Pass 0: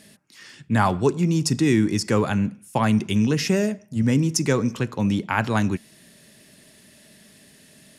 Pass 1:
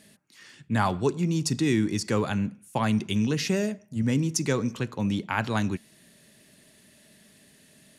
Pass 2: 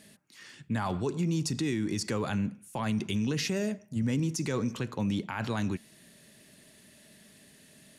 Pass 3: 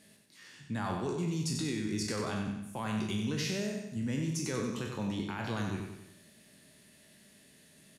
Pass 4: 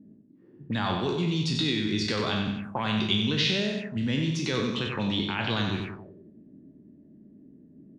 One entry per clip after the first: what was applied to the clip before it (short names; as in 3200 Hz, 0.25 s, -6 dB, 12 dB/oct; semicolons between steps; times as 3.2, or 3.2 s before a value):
notch 5200 Hz, Q 13; dynamic EQ 4100 Hz, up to +5 dB, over -44 dBFS, Q 1.5; gain -5 dB
limiter -22 dBFS, peak gain reduction 10.5 dB
spectral trails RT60 0.49 s; on a send: feedback echo 93 ms, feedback 47%, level -6 dB; on the sum: gain -6 dB
envelope low-pass 250–3600 Hz up, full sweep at -32.5 dBFS; gain +6 dB